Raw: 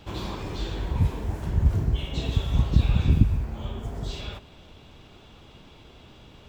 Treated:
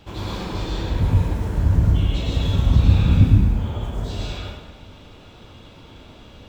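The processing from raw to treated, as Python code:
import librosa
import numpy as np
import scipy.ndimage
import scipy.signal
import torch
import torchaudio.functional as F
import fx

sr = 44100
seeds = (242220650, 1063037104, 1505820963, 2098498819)

y = fx.rev_plate(x, sr, seeds[0], rt60_s=1.1, hf_ratio=0.75, predelay_ms=90, drr_db=-4.0)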